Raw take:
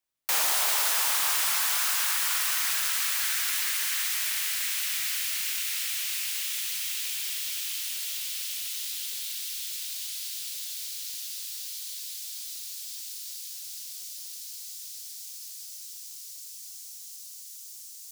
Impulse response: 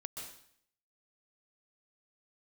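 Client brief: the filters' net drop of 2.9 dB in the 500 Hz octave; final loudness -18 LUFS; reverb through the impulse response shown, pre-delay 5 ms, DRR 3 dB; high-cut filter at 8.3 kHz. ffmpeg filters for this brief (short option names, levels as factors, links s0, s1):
-filter_complex "[0:a]lowpass=8300,equalizer=f=500:t=o:g=-4,asplit=2[s0][s1];[1:a]atrim=start_sample=2205,adelay=5[s2];[s1][s2]afir=irnorm=-1:irlink=0,volume=0.891[s3];[s0][s3]amix=inputs=2:normalize=0,volume=3.76"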